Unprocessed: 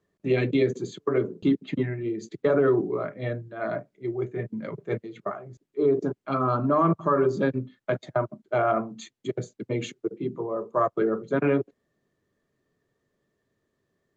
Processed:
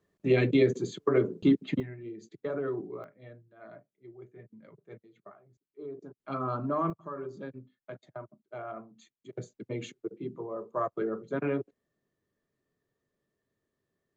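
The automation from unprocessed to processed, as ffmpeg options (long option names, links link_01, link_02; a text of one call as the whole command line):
ffmpeg -i in.wav -af "asetnsamples=nb_out_samples=441:pad=0,asendcmd='1.8 volume volume -12dB;3.04 volume volume -19.5dB;6.2 volume volume -8dB;6.9 volume volume -17dB;9.33 volume volume -7.5dB',volume=-0.5dB" out.wav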